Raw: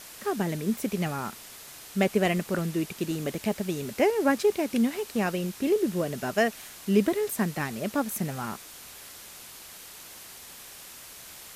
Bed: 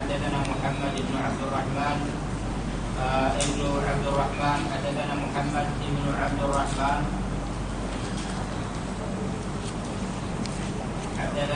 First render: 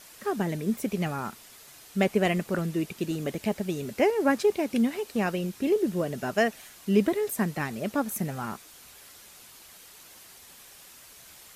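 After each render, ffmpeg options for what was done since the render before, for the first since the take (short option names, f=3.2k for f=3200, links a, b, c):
-af "afftdn=nr=6:nf=-46"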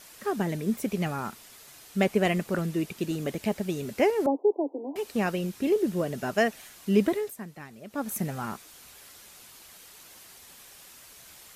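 -filter_complex "[0:a]asettb=1/sr,asplit=3[a][b][c];[a]atrim=end=4.264[d];[b]atrim=start=4.26:end=4.96,asetpts=PTS-STARTPTS,afade=t=in:d=0.004:c=qsin,afade=t=out:st=0.696:d=0.004:c=qsin,asuperpass=centerf=520:order=20:qfactor=0.73[e];[c]atrim=start=4.956[f];[d][e]acrossfade=d=0.004:c1=hsin:c2=qsin[g];[g][f]acrossfade=d=0.004:c1=qsin:c2=hsin,asplit=3[h][i][j];[h]atrim=end=7.36,asetpts=PTS-STARTPTS,afade=t=out:st=7.14:d=0.22:silence=0.223872[k];[i]atrim=start=7.36:end=7.89,asetpts=PTS-STARTPTS,volume=-13dB[l];[j]atrim=start=7.89,asetpts=PTS-STARTPTS,afade=t=in:d=0.22:silence=0.223872[m];[k][l][m]concat=n=3:v=0:a=1"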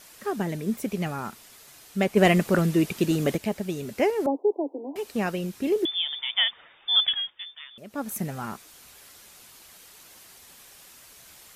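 -filter_complex "[0:a]asplit=3[a][b][c];[a]afade=t=out:st=2.16:d=0.02[d];[b]acontrast=78,afade=t=in:st=2.16:d=0.02,afade=t=out:st=3.36:d=0.02[e];[c]afade=t=in:st=3.36:d=0.02[f];[d][e][f]amix=inputs=3:normalize=0,asettb=1/sr,asplit=3[g][h][i];[g]atrim=end=5.854[j];[h]atrim=start=5.85:end=7.78,asetpts=PTS-STARTPTS,afade=t=in:d=0.004:c=qsin,afade=t=out:st=1.926:d=0.004:c=qsin,lowpass=f=3.1k:t=q:w=0.5098,lowpass=f=3.1k:t=q:w=0.6013,lowpass=f=3.1k:t=q:w=0.9,lowpass=f=3.1k:t=q:w=2.563,afreqshift=-3700[k];[i]atrim=start=7.776[l];[j][k]acrossfade=d=0.004:c1=hsin:c2=qsin[m];[m][l]acrossfade=d=0.004:c1=qsin:c2=hsin"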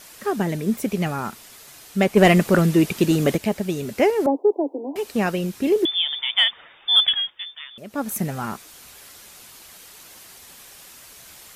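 -af "acontrast=35"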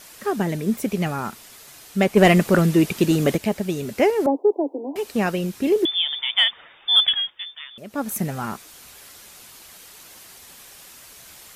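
-af anull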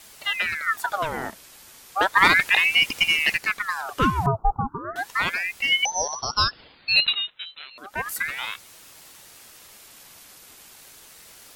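-af "aeval=exprs='val(0)*sin(2*PI*1500*n/s+1500*0.75/0.34*sin(2*PI*0.34*n/s))':c=same"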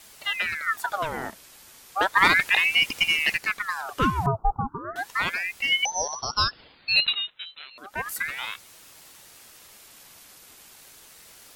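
-af "volume=-2dB"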